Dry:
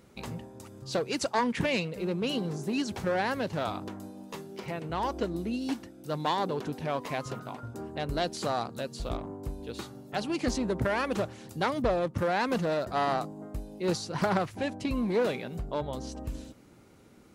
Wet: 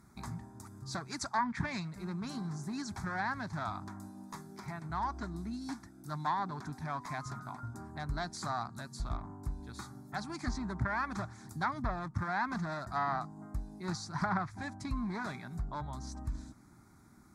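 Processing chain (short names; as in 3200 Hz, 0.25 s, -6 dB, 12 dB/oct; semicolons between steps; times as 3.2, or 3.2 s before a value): dynamic EQ 350 Hz, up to -6 dB, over -42 dBFS, Q 0.71; fixed phaser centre 1200 Hz, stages 4; treble ducked by the level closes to 2400 Hz, closed at -27 dBFS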